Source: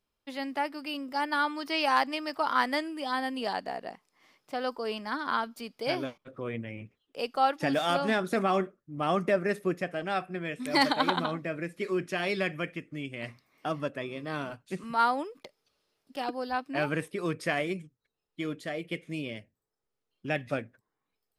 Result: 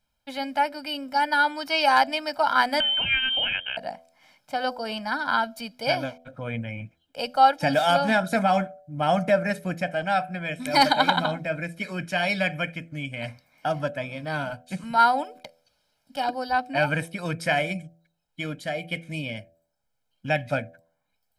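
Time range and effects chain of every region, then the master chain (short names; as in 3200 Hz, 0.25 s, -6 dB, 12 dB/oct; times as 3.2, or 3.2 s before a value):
2.8–3.77 inverted band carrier 3400 Hz + three-band squash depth 70%
whole clip: comb 1.3 ms, depth 92%; de-hum 82.89 Hz, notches 9; gain +3.5 dB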